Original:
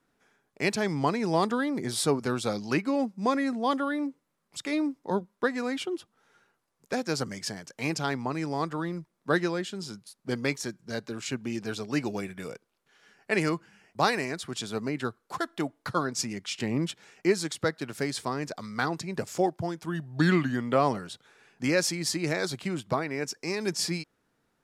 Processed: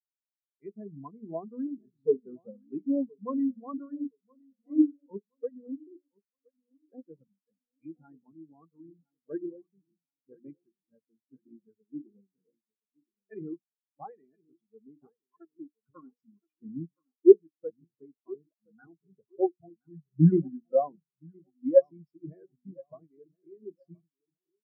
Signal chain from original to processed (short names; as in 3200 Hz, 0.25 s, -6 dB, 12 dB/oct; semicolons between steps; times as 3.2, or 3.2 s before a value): high shelf 4300 Hz -8.5 dB; notches 60/120/180/240/300/360/420 Hz; feedback echo 1.02 s, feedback 59%, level -8.5 dB; in parallel at -4 dB: sine folder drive 4 dB, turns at -9 dBFS; on the sum: spectral expander 4:1; gain +2 dB